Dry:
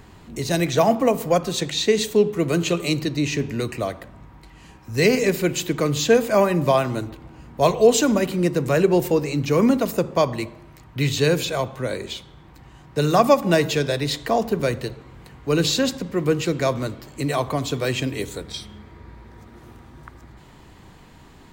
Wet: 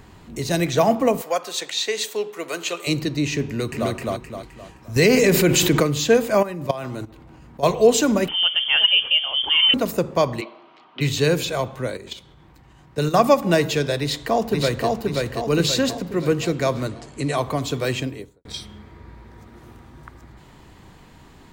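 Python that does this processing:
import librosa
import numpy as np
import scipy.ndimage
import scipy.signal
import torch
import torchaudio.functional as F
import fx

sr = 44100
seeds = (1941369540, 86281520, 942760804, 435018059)

y = fx.highpass(x, sr, hz=640.0, slope=12, at=(1.21, 2.87))
y = fx.echo_throw(y, sr, start_s=3.46, length_s=0.44, ms=260, feedback_pct=40, wet_db=-0.5)
y = fx.env_flatten(y, sr, amount_pct=70, at=(4.96, 5.83))
y = fx.level_steps(y, sr, step_db=15, at=(6.37, 7.65), fade=0.02)
y = fx.freq_invert(y, sr, carrier_hz=3300, at=(8.28, 9.74))
y = fx.cabinet(y, sr, low_hz=280.0, low_slope=24, high_hz=4400.0, hz=(320.0, 500.0, 710.0, 1200.0, 1800.0, 3100.0), db=(-3, -4, 5, 6, -6, 7), at=(10.4, 11.0), fade=0.02)
y = fx.level_steps(y, sr, step_db=10, at=(11.9, 13.14))
y = fx.echo_throw(y, sr, start_s=13.99, length_s=0.89, ms=530, feedback_pct=50, wet_db=-2.0)
y = fx.resample_bad(y, sr, factor=2, down='none', up='filtered', at=(16.88, 17.37))
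y = fx.studio_fade_out(y, sr, start_s=17.9, length_s=0.55)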